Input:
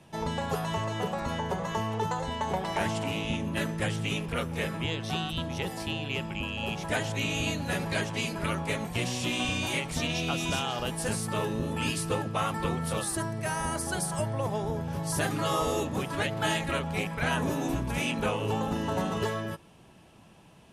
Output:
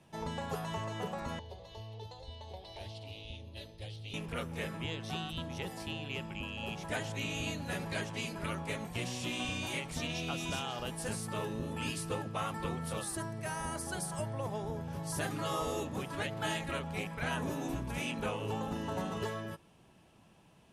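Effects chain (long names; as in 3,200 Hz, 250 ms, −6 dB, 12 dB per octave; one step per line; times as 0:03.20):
0:01.39–0:04.14: drawn EQ curve 100 Hz 0 dB, 160 Hz −21 dB, 470 Hz −9 dB, 680 Hz −9 dB, 1,400 Hz −25 dB, 4,200 Hz +3 dB, 7,300 Hz −19 dB, 10,000 Hz −12 dB
level −7 dB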